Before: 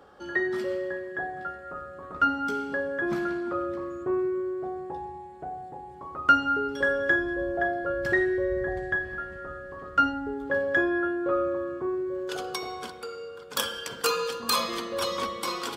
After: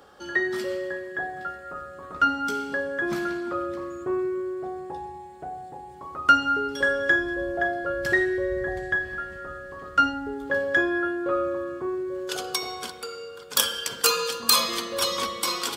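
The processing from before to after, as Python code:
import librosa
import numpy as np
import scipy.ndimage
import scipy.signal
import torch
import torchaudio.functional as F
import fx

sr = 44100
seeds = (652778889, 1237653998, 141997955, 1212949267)

y = fx.high_shelf(x, sr, hz=2800.0, db=10.5)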